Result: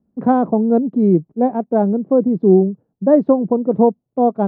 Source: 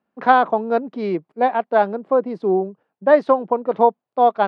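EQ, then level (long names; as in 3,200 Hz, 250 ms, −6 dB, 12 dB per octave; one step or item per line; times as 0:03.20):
spectral tilt −4 dB per octave
tilt shelving filter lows +6.5 dB
low-shelf EQ 420 Hz +11 dB
−10.0 dB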